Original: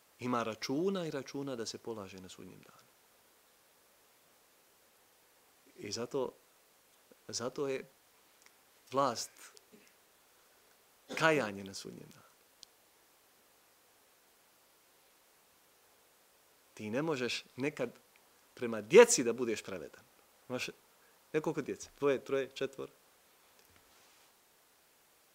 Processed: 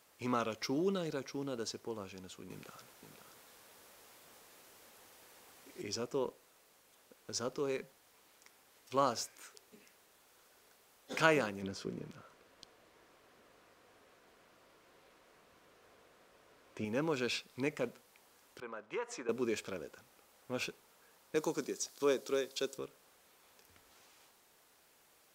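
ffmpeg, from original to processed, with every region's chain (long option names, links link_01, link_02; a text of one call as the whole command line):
ffmpeg -i in.wav -filter_complex "[0:a]asettb=1/sr,asplit=3[link_01][link_02][link_03];[link_01]atrim=end=2.504[link_04];[link_02]atrim=start=2.5:end=5.82,asetpts=PTS-STARTPTS,afade=type=in:duration=0.004:curve=qsin,afade=type=out:start_time=3.316:duration=0.004:curve=qsin,acontrast=56,aecho=1:1:524:0.355,atrim=end_sample=146412[link_05];[link_03]atrim=start=5.816[link_06];[link_04][link_05]acrossfade=duration=0.004:curve1=hsin:curve2=qsin[link_07];[link_07][link_06]acrossfade=duration=0.004:curve1=qsin:curve2=hsin,asettb=1/sr,asplit=3[link_08][link_09][link_10];[link_08]atrim=end=11.624[link_11];[link_09]atrim=start=11.62:end=16.85,asetpts=PTS-STARTPTS,afade=type=in:duration=0.004:curve=qsin,afade=type=out:start_time=5.226:duration=0.004:curve=qsin,lowpass=frequency=1800:poles=1,acontrast=68,bandreject=frequency=840:width=7.7[link_12];[link_10]atrim=start=16.846[link_13];[link_11][link_12]acrossfade=duration=0.004:curve1=hsin:curve2=qsin[link_14];[link_14][link_13]acrossfade=duration=0.004:curve1=qsin:curve2=hsin,asettb=1/sr,asplit=3[link_15][link_16][link_17];[link_15]atrim=end=18.604[link_18];[link_16]atrim=start=18.6:end=19.29,asetpts=PTS-STARTPTS,afade=type=in:duration=0.004:curve=qsin,afade=type=out:start_time=0.686:duration=0.004:curve=qsin,bandpass=frequency=1100:width_type=q:width=1.3,acompressor=threshold=-38dB:ratio=3:attack=3.2:release=140:knee=1:detection=peak[link_19];[link_17]atrim=start=19.286[link_20];[link_18][link_19]acrossfade=duration=0.004:curve1=hsin:curve2=qsin[link_21];[link_21][link_20]acrossfade=duration=0.004:curve1=qsin:curve2=hsin,asettb=1/sr,asplit=3[link_22][link_23][link_24];[link_22]atrim=end=21.354[link_25];[link_23]atrim=start=21.35:end=22.78,asetpts=PTS-STARTPTS,afade=type=in:duration=0.004:curve=qsin,afade=type=out:start_time=1.426:duration=0.004:curve=qsin,highpass=200,highshelf=frequency=3400:width_type=q:width=1.5:gain=7.5[link_26];[link_24]atrim=start=22.776[link_27];[link_25][link_26]acrossfade=duration=0.004:curve1=hsin:curve2=qsin[link_28];[link_28][link_27]acrossfade=duration=0.004:curve1=qsin:curve2=hsin" out.wav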